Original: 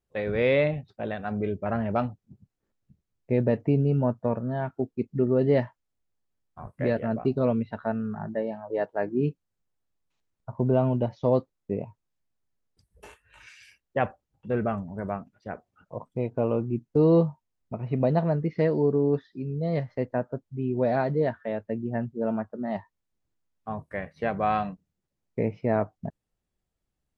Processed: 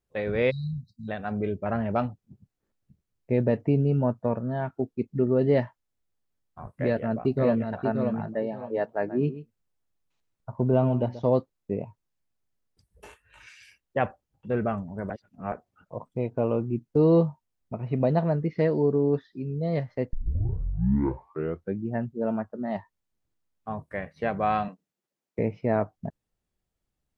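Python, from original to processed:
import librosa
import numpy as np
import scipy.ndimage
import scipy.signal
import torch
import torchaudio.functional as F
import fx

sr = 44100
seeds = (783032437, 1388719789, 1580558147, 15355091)

y = fx.spec_erase(x, sr, start_s=0.5, length_s=0.59, low_hz=240.0, high_hz=3800.0)
y = fx.echo_throw(y, sr, start_s=6.66, length_s=1.01, ms=580, feedback_pct=25, wet_db=-5.0)
y = fx.echo_single(y, sr, ms=133, db=-14.5, at=(9.07, 11.24), fade=0.02)
y = fx.highpass(y, sr, hz=290.0, slope=12, at=(24.68, 25.39))
y = fx.edit(y, sr, fx.reverse_span(start_s=15.1, length_s=0.42),
    fx.tape_start(start_s=20.13, length_s=1.81), tone=tone)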